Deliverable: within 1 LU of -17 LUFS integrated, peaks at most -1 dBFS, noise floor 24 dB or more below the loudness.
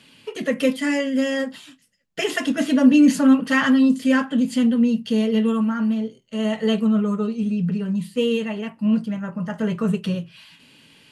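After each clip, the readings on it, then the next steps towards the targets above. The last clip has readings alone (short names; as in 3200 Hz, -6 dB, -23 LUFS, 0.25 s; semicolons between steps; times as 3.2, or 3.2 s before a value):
loudness -20.5 LUFS; peak -5.0 dBFS; loudness target -17.0 LUFS
-> gain +3.5 dB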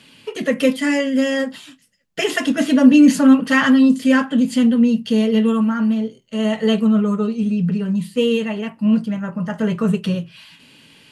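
loudness -17.0 LUFS; peak -1.5 dBFS; noise floor -51 dBFS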